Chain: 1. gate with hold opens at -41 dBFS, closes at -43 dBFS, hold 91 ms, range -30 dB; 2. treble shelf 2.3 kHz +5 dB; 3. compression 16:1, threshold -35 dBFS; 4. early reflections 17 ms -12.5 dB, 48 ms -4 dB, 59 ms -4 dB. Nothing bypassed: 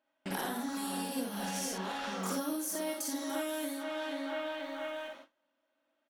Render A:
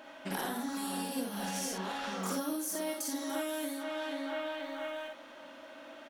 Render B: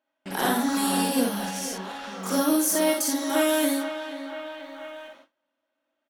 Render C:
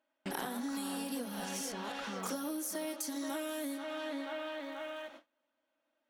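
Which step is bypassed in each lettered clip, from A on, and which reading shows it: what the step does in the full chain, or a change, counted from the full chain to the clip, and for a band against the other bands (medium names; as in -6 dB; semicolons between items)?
1, momentary loudness spread change +7 LU; 3, mean gain reduction 7.5 dB; 4, echo-to-direct -0.5 dB to none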